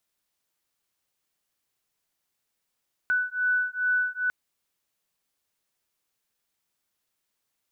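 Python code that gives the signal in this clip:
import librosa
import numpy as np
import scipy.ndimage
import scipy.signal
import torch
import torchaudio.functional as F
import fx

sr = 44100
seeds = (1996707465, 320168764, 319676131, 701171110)

y = fx.two_tone_beats(sr, length_s=1.2, hz=1490.0, beat_hz=2.4, level_db=-26.0)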